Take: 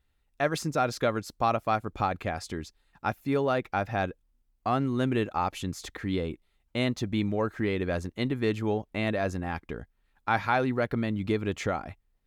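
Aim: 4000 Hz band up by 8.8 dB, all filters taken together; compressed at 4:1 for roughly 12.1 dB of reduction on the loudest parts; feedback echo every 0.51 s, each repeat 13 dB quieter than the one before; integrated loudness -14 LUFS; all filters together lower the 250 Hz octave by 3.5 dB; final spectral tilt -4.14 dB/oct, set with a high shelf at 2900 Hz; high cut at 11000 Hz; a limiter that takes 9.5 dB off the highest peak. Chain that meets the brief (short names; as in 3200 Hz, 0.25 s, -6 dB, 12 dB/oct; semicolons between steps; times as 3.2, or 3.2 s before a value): LPF 11000 Hz; bell 250 Hz -4.5 dB; high shelf 2900 Hz +8.5 dB; bell 4000 Hz +4.5 dB; compressor 4:1, threshold -35 dBFS; limiter -27.5 dBFS; feedback echo 0.51 s, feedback 22%, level -13 dB; gain +25.5 dB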